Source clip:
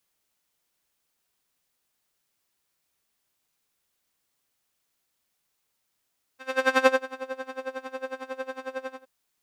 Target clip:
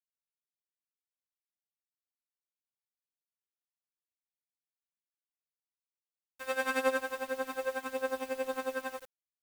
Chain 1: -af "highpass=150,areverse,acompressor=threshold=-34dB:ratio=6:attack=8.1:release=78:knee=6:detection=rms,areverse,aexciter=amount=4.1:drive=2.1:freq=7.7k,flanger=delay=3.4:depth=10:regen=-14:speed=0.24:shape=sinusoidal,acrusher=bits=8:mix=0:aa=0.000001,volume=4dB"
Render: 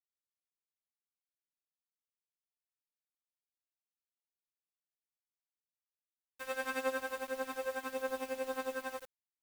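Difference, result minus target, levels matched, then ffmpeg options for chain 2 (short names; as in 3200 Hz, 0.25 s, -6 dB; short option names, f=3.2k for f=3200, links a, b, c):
compressor: peak gain reduction +6 dB
-af "highpass=150,areverse,acompressor=threshold=-27dB:ratio=6:attack=8.1:release=78:knee=6:detection=rms,areverse,aexciter=amount=4.1:drive=2.1:freq=7.7k,flanger=delay=3.4:depth=10:regen=-14:speed=0.24:shape=sinusoidal,acrusher=bits=8:mix=0:aa=0.000001,volume=4dB"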